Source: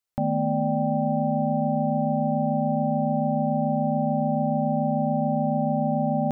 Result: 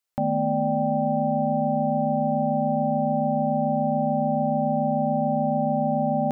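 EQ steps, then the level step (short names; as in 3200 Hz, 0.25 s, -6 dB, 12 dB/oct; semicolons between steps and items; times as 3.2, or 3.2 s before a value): low shelf 180 Hz -7.5 dB; +2.5 dB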